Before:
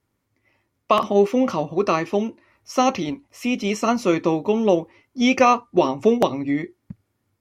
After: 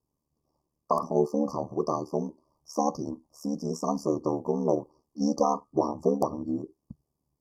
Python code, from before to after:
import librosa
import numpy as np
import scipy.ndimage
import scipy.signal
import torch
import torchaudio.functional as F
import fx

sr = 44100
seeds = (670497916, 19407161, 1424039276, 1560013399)

y = fx.brickwall_bandstop(x, sr, low_hz=1200.0, high_hz=4400.0)
y = y * np.sin(2.0 * np.pi * 37.0 * np.arange(len(y)) / sr)
y = F.gain(torch.from_numpy(y), -5.0).numpy()